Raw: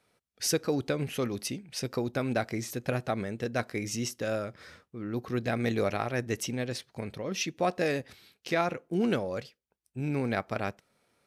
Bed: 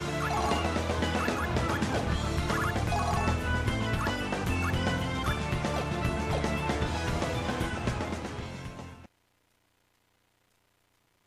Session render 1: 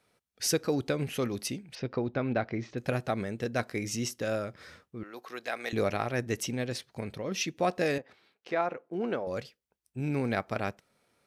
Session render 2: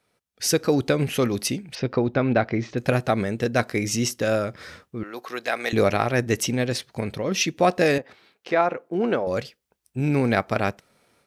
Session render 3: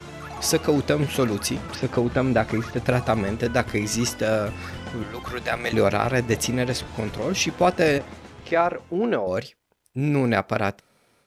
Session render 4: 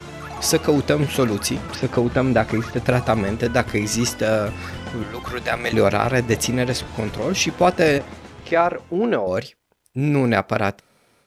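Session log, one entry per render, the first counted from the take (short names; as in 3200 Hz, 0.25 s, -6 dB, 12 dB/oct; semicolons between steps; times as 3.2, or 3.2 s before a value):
1.75–2.78 Gaussian blur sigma 2.3 samples; 5.03–5.73 HPF 680 Hz; 7.98–9.27 band-pass 780 Hz, Q 0.68
AGC gain up to 9 dB
add bed -6.5 dB
gain +3 dB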